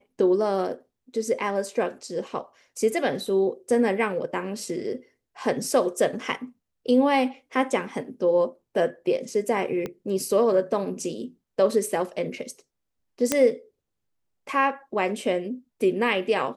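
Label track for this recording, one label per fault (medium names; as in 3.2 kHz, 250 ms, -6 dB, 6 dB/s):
9.860000	9.860000	pop -18 dBFS
13.320000	13.320000	pop -6 dBFS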